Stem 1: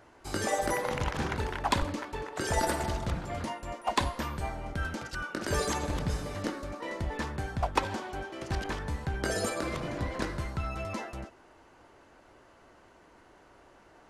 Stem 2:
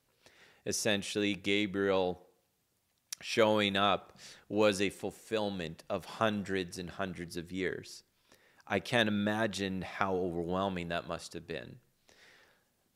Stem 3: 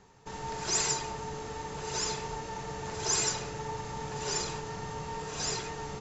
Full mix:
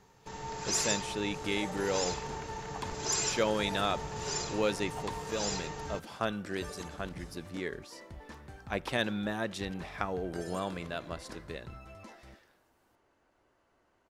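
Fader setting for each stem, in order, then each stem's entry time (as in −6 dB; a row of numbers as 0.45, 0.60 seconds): −14.0, −2.5, −2.5 decibels; 1.10, 0.00, 0.00 seconds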